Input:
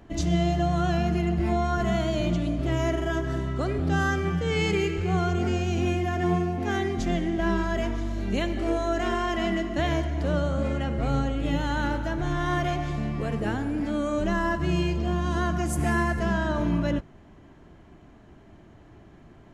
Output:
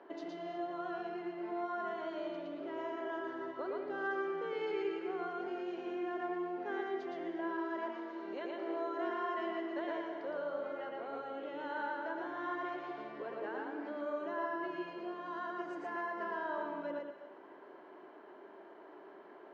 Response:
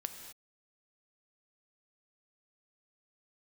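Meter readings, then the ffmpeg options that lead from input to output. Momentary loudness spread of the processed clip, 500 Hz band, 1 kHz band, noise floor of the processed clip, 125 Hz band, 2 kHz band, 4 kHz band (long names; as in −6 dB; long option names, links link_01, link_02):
16 LU, −9.5 dB, −9.0 dB, −55 dBFS, −39.0 dB, −11.5 dB, −18.0 dB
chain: -filter_complex "[0:a]acompressor=threshold=-35dB:ratio=6,highpass=frequency=330:width=0.5412,highpass=frequency=330:width=1.3066,equalizer=frequency=390:width_type=q:width=4:gain=7,equalizer=frequency=570:width_type=q:width=4:gain=5,equalizer=frequency=960:width_type=q:width=4:gain=8,equalizer=frequency=1500:width_type=q:width=4:gain=5,equalizer=frequency=2500:width_type=q:width=4:gain=-5,equalizer=frequency=3500:width_type=q:width=4:gain=-5,lowpass=frequency=3900:width=0.5412,lowpass=frequency=3900:width=1.3066,asplit=2[link_01][link_02];[1:a]atrim=start_sample=2205,adelay=115[link_03];[link_02][link_03]afir=irnorm=-1:irlink=0,volume=0dB[link_04];[link_01][link_04]amix=inputs=2:normalize=0,volume=-4.5dB"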